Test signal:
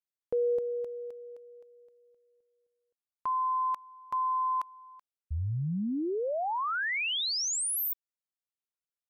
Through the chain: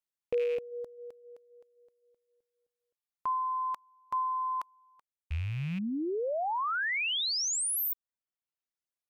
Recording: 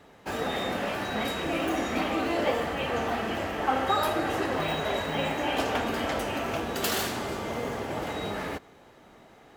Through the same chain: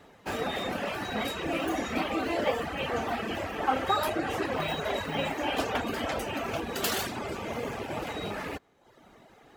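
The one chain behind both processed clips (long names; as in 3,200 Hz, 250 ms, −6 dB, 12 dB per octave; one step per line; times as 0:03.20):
loose part that buzzes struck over −45 dBFS, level −33 dBFS
reverb reduction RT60 0.82 s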